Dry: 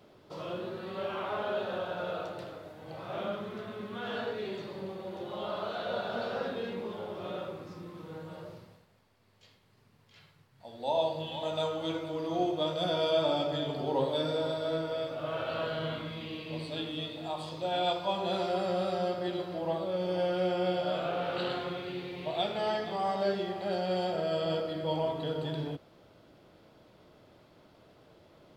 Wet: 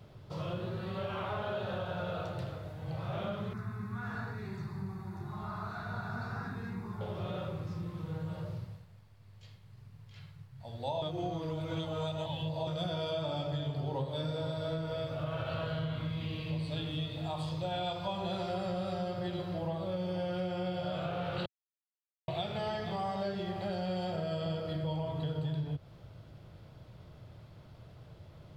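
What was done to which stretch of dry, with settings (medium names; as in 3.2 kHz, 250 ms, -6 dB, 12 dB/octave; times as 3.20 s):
3.53–7.01 s: static phaser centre 1.3 kHz, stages 4
11.02–12.67 s: reverse
21.46–22.28 s: mute
whole clip: resonant low shelf 180 Hz +13 dB, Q 1.5; compression, threshold -32 dBFS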